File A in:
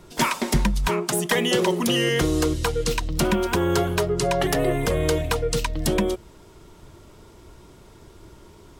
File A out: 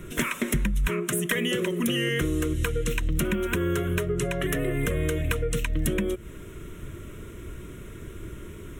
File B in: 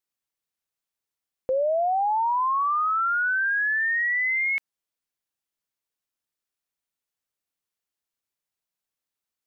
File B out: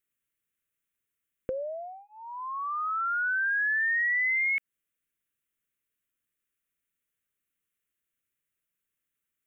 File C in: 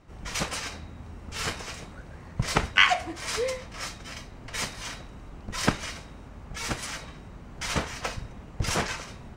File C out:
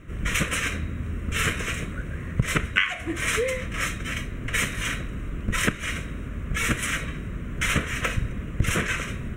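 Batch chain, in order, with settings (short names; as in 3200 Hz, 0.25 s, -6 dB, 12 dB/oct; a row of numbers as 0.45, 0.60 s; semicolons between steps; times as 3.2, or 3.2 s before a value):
compressor 20:1, threshold -29 dBFS; fixed phaser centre 2000 Hz, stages 4; match loudness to -27 LUFS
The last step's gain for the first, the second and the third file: +9.0, +4.5, +12.5 dB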